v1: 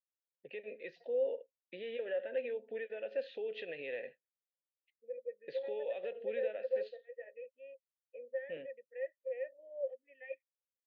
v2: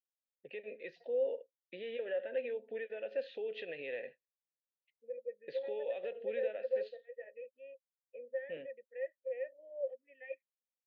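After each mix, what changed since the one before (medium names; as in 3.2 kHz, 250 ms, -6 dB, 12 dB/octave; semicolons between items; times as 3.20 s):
second voice: remove high-pass 250 Hz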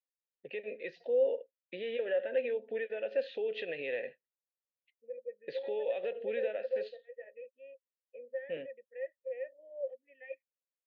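first voice +5.0 dB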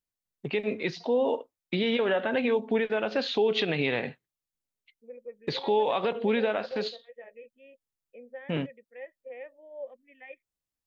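second voice -4.5 dB; master: remove vowel filter e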